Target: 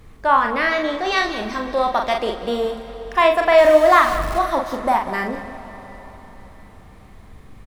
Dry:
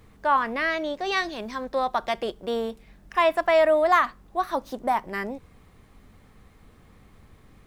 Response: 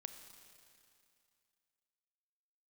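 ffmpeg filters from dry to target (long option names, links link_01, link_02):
-filter_complex "[0:a]asettb=1/sr,asplit=3[link_01][link_02][link_03];[link_01]atrim=end=3.584[link_04];[link_02]atrim=start=3.58:end=4.39,asetpts=PTS-STARTPTS,afade=type=in:duration=0.004:curve=qsin,afade=type=out:start_time=0.806:duration=0.004:curve=qsin,aeval=exprs='val(0)+0.5*0.0299*sgn(val(0))':channel_layout=same[link_05];[link_03]atrim=start=4.386[link_06];[link_04][link_05]acrossfade=duration=0.004:curve1=hsin:curve2=qsin[link_07];[link_07][link_06]acrossfade=duration=0.004:curve1=qsin:curve2=hsin,aecho=1:1:42|193:0.562|0.2,asplit=2[link_08][link_09];[1:a]atrim=start_sample=2205,asetrate=24255,aresample=44100,lowshelf=frequency=81:gain=9.5[link_10];[link_09][link_10]afir=irnorm=-1:irlink=0,volume=1.5dB[link_11];[link_08][link_11]amix=inputs=2:normalize=0,volume=-1dB"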